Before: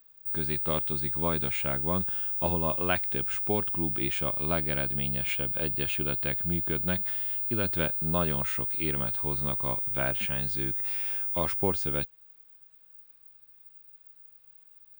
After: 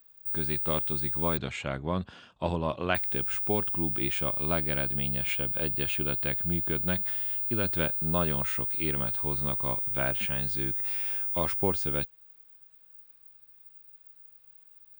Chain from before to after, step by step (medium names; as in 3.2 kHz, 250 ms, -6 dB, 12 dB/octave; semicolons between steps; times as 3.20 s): 1.37–2.95 s: steep low-pass 8.3 kHz 72 dB/octave